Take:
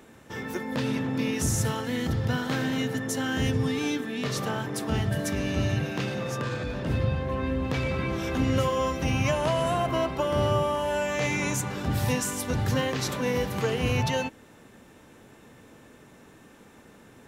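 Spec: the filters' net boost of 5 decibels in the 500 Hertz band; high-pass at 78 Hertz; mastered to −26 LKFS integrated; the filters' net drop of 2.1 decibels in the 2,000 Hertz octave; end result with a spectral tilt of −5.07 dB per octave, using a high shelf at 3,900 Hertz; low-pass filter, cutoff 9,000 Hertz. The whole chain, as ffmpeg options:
ffmpeg -i in.wav -af "highpass=78,lowpass=9000,equalizer=frequency=500:width_type=o:gain=6,equalizer=frequency=2000:width_type=o:gain=-4.5,highshelf=frequency=3900:gain=5.5,volume=-0.5dB" out.wav

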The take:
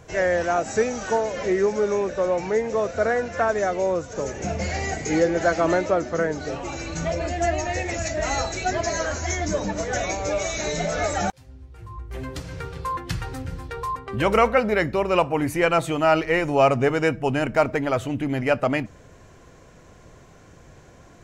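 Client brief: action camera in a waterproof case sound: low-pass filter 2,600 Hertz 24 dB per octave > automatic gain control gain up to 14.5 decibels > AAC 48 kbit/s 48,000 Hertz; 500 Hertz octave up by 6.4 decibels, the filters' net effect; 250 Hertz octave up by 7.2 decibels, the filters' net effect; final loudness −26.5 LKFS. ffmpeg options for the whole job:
ffmpeg -i in.wav -af "lowpass=frequency=2600:width=0.5412,lowpass=frequency=2600:width=1.3066,equalizer=frequency=250:width_type=o:gain=7.5,equalizer=frequency=500:width_type=o:gain=6,dynaudnorm=maxgain=14.5dB,volume=-8.5dB" -ar 48000 -c:a aac -b:a 48k out.aac

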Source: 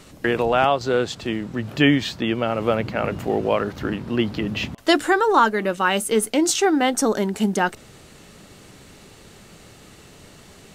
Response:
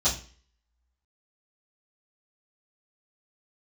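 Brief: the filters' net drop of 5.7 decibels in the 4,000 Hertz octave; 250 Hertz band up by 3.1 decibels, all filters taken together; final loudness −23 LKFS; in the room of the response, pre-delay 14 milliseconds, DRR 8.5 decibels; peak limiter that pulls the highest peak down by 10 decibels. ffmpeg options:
-filter_complex "[0:a]equalizer=frequency=250:width_type=o:gain=4,equalizer=frequency=4000:width_type=o:gain=-8.5,alimiter=limit=-12dB:level=0:latency=1,asplit=2[link_01][link_02];[1:a]atrim=start_sample=2205,adelay=14[link_03];[link_02][link_03]afir=irnorm=-1:irlink=0,volume=-19.5dB[link_04];[link_01][link_04]amix=inputs=2:normalize=0,volume=-1dB"

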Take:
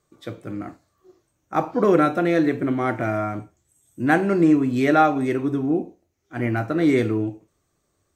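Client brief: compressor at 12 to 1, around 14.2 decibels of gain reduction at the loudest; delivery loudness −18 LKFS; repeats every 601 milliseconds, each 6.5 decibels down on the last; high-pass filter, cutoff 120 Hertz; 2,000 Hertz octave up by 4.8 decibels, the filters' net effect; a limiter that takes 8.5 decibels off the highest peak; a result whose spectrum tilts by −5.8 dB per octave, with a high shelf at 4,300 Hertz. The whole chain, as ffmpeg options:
ffmpeg -i in.wav -af "highpass=120,equalizer=frequency=2000:width_type=o:gain=5.5,highshelf=frequency=4300:gain=4,acompressor=threshold=-26dB:ratio=12,alimiter=limit=-22dB:level=0:latency=1,aecho=1:1:601|1202|1803|2404|3005|3606:0.473|0.222|0.105|0.0491|0.0231|0.0109,volume=14.5dB" out.wav

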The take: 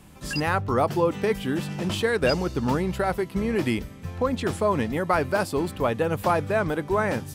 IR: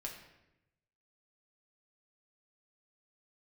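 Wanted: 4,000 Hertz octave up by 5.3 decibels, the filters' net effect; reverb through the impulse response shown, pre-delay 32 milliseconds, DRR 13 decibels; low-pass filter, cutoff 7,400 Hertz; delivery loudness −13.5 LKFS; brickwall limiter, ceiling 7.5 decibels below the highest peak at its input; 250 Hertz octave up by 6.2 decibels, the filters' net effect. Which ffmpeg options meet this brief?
-filter_complex "[0:a]lowpass=7400,equalizer=frequency=250:width_type=o:gain=8,equalizer=frequency=4000:width_type=o:gain=7.5,alimiter=limit=-14dB:level=0:latency=1,asplit=2[link_01][link_02];[1:a]atrim=start_sample=2205,adelay=32[link_03];[link_02][link_03]afir=irnorm=-1:irlink=0,volume=-11.5dB[link_04];[link_01][link_04]amix=inputs=2:normalize=0,volume=10.5dB"

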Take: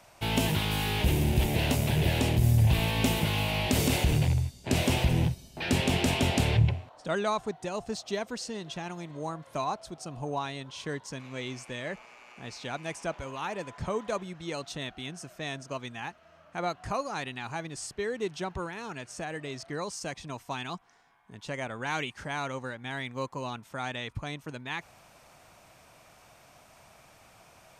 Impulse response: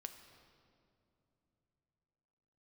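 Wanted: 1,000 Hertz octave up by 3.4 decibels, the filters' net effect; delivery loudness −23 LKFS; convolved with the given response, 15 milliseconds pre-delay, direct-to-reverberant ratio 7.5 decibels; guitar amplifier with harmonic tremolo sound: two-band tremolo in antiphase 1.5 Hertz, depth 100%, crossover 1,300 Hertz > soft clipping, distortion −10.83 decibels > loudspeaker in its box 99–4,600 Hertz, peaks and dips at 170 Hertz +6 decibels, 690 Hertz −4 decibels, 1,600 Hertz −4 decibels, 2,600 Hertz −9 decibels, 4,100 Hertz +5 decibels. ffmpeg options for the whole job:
-filter_complex "[0:a]equalizer=frequency=1000:width_type=o:gain=6,asplit=2[link_01][link_02];[1:a]atrim=start_sample=2205,adelay=15[link_03];[link_02][link_03]afir=irnorm=-1:irlink=0,volume=-3dB[link_04];[link_01][link_04]amix=inputs=2:normalize=0,acrossover=split=1300[link_05][link_06];[link_05]aeval=exprs='val(0)*(1-1/2+1/2*cos(2*PI*1.5*n/s))':channel_layout=same[link_07];[link_06]aeval=exprs='val(0)*(1-1/2-1/2*cos(2*PI*1.5*n/s))':channel_layout=same[link_08];[link_07][link_08]amix=inputs=2:normalize=0,asoftclip=threshold=-24dB,highpass=99,equalizer=frequency=170:width_type=q:width=4:gain=6,equalizer=frequency=690:width_type=q:width=4:gain=-4,equalizer=frequency=1600:width_type=q:width=4:gain=-4,equalizer=frequency=2600:width_type=q:width=4:gain=-9,equalizer=frequency=4100:width_type=q:width=4:gain=5,lowpass=frequency=4600:width=0.5412,lowpass=frequency=4600:width=1.3066,volume=14dB"

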